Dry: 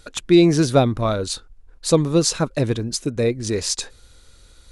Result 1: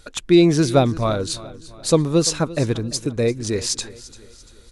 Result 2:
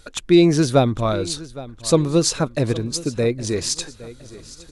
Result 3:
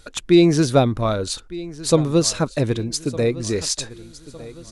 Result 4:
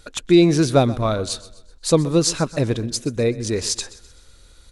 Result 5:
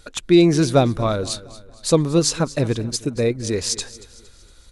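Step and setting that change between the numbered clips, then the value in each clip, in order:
feedback echo, time: 0.343, 0.814, 1.208, 0.127, 0.231 s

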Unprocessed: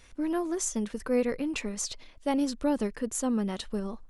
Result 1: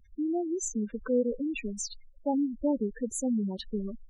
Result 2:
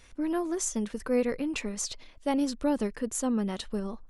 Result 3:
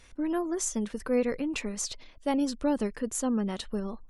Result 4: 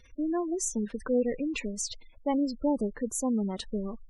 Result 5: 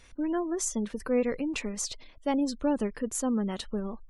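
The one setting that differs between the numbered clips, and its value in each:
spectral gate, under each frame's peak: -10, -60, -45, -20, -35 dB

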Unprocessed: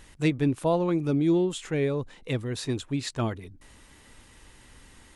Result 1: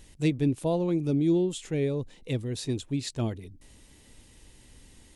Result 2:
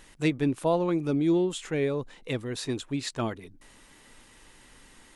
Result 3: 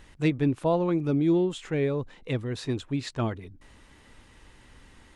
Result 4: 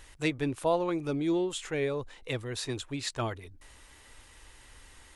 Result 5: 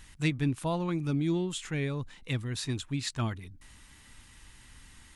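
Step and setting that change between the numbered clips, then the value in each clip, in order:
bell, frequency: 1300, 69, 14000, 190, 480 Hz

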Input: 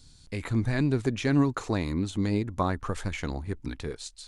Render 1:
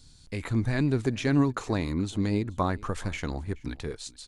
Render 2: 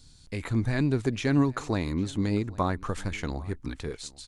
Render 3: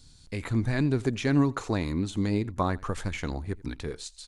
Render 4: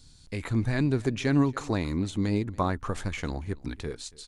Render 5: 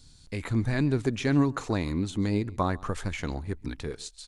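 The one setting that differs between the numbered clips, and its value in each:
echo, time: 426, 803, 85, 282, 137 ms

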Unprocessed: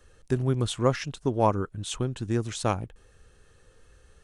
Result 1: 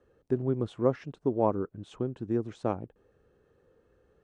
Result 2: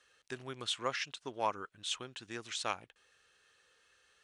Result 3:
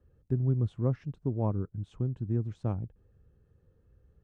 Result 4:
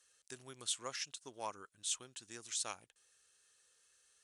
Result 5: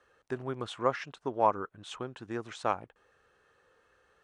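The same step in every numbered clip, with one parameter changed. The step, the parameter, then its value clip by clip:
band-pass, frequency: 360, 3000, 120, 8000, 1100 Hz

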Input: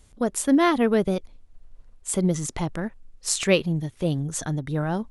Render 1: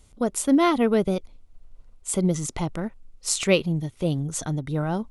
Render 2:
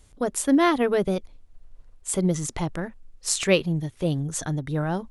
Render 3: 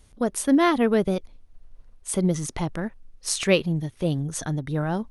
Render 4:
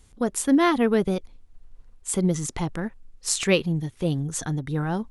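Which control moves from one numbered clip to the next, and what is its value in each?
notch, frequency: 1700, 220, 7400, 610 Hz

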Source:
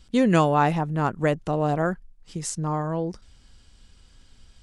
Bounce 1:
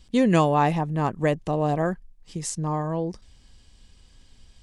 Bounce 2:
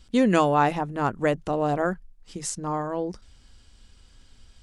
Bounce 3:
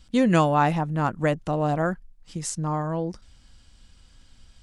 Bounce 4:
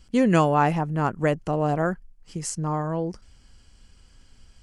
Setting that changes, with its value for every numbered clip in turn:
notch, frequency: 1400, 160, 410, 3700 Hz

